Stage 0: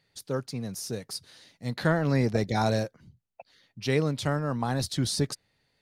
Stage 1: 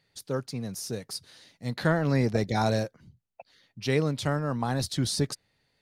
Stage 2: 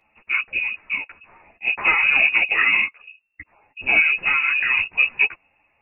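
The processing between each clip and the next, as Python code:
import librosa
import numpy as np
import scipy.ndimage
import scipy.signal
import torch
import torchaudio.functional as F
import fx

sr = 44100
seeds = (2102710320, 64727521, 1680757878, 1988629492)

y1 = x
y2 = fx.fold_sine(y1, sr, drive_db=5, ceiling_db=-10.5)
y2 = fx.freq_invert(y2, sr, carrier_hz=2700)
y2 = fx.ensemble(y2, sr)
y2 = F.gain(torch.from_numpy(y2), 3.0).numpy()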